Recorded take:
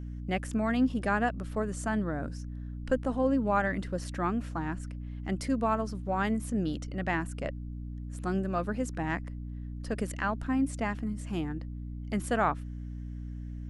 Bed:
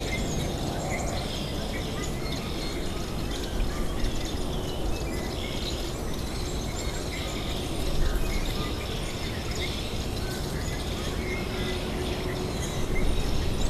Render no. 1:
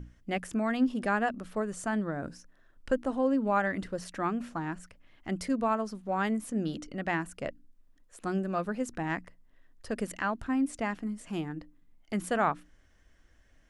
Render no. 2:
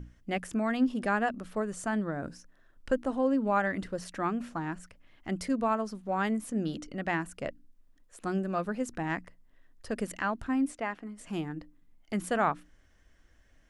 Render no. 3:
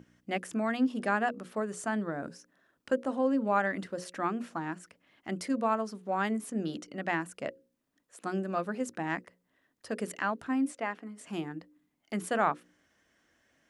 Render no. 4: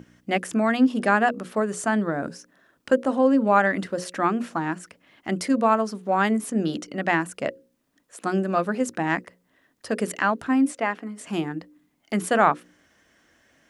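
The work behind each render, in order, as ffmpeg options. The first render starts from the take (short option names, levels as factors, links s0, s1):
-af "bandreject=f=60:t=h:w=6,bandreject=f=120:t=h:w=6,bandreject=f=180:t=h:w=6,bandreject=f=240:t=h:w=6,bandreject=f=300:t=h:w=6"
-filter_complex "[0:a]asplit=3[s0][s1][s2];[s0]afade=t=out:st=10.72:d=0.02[s3];[s1]bass=f=250:g=-12,treble=f=4000:g=-10,afade=t=in:st=10.72:d=0.02,afade=t=out:st=11.17:d=0.02[s4];[s2]afade=t=in:st=11.17:d=0.02[s5];[s3][s4][s5]amix=inputs=3:normalize=0"
-af "highpass=180,bandreject=f=60:t=h:w=6,bandreject=f=120:t=h:w=6,bandreject=f=180:t=h:w=6,bandreject=f=240:t=h:w=6,bandreject=f=300:t=h:w=6,bandreject=f=360:t=h:w=6,bandreject=f=420:t=h:w=6,bandreject=f=480:t=h:w=6,bandreject=f=540:t=h:w=6"
-af "volume=2.82"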